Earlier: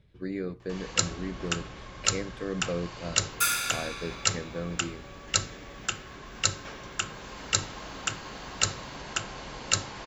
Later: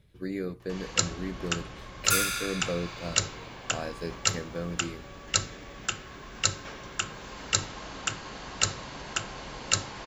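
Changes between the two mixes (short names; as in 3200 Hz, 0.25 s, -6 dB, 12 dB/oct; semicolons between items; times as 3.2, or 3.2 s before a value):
speech: remove air absorption 95 m; second sound: entry -1.30 s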